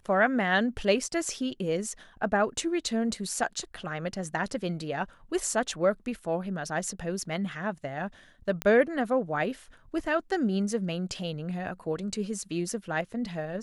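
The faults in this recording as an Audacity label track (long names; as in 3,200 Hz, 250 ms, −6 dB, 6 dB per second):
8.620000	8.620000	click −14 dBFS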